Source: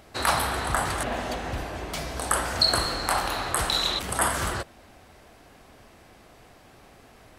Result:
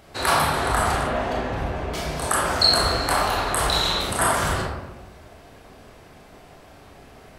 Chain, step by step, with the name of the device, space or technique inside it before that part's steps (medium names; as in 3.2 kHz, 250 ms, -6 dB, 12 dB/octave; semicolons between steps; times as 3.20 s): 0.97–1.95 s: treble shelf 4.8 kHz -11 dB; bathroom (reverberation RT60 1.0 s, pre-delay 24 ms, DRR -3 dB)